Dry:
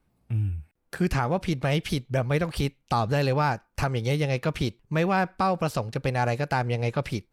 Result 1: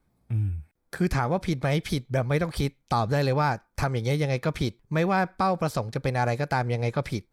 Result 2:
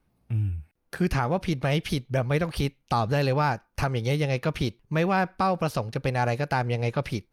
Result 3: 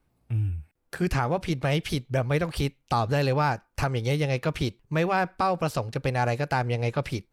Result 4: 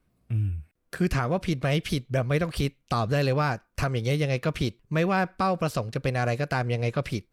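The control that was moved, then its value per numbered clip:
notch, frequency: 2800, 7600, 200, 850 Hz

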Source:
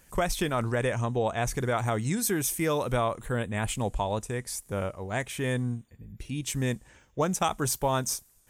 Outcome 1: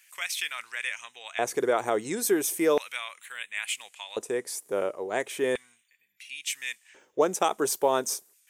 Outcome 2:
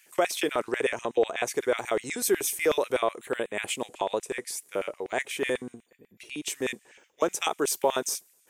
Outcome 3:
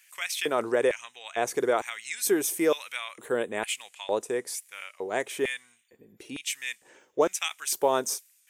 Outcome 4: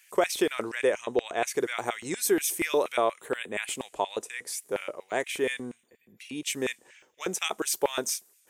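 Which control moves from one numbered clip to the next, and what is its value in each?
LFO high-pass, rate: 0.36, 8.1, 1.1, 4.2 Hz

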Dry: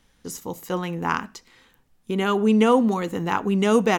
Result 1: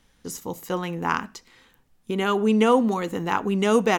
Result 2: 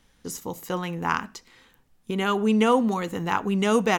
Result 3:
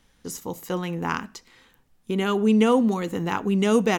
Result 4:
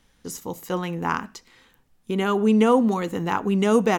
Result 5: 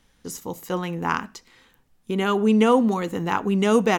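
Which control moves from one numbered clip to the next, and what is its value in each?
dynamic EQ, frequency: 120, 320, 990, 3200, 9000 Hz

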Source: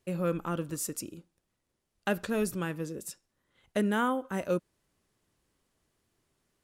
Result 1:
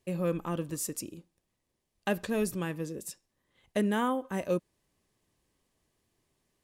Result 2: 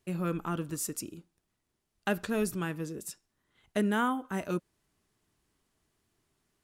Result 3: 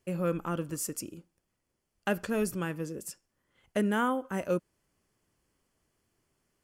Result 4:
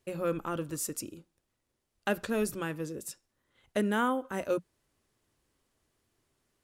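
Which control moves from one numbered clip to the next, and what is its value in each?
notch, frequency: 1400, 530, 3800, 180 Hz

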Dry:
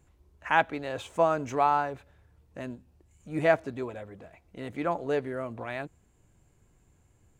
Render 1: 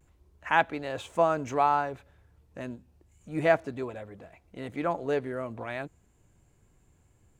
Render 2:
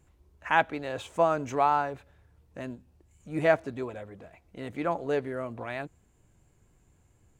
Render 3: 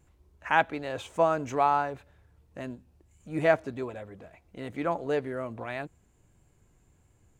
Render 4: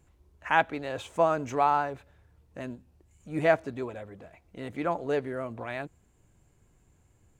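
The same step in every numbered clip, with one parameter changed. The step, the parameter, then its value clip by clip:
vibrato, rate: 0.31, 4.2, 1.6, 15 Hz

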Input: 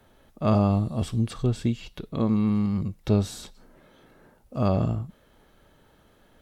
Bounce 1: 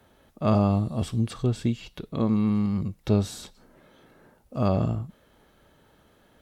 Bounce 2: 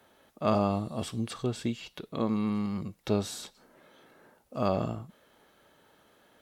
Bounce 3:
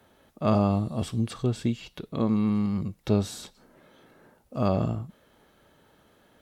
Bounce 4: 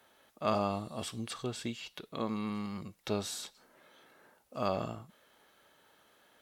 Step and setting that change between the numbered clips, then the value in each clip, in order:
HPF, cutoff: 44, 380, 120, 1000 Hz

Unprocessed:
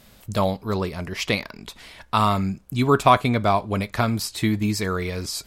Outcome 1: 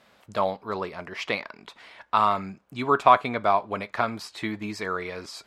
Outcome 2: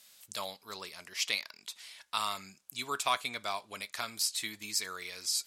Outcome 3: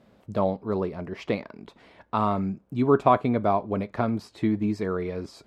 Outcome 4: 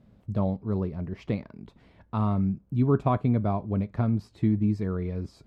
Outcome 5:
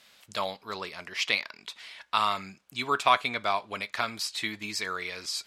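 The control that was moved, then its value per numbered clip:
band-pass, frequency: 1100, 7800, 380, 140, 3000 Hz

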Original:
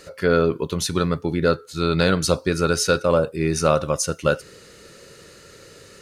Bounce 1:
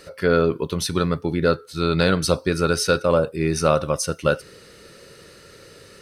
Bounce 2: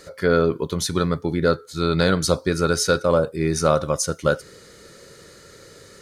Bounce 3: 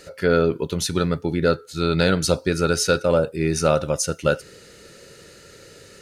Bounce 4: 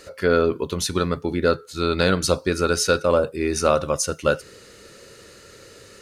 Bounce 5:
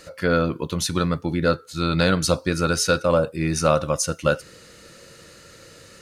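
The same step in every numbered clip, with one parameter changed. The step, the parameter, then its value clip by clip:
notch, frequency: 6900, 2700, 1100, 160, 410 Hz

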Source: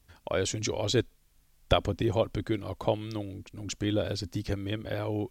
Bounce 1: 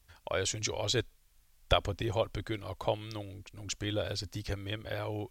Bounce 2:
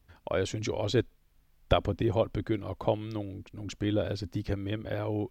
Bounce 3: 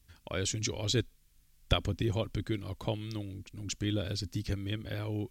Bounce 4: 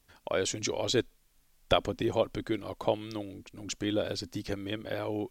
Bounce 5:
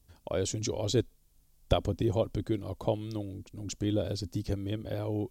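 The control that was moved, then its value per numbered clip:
bell, frequency: 230, 8400, 680, 74, 1800 Hz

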